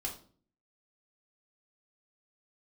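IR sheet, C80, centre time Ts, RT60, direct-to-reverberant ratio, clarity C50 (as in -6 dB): 14.5 dB, 19 ms, 0.45 s, -1.5 dB, 9.0 dB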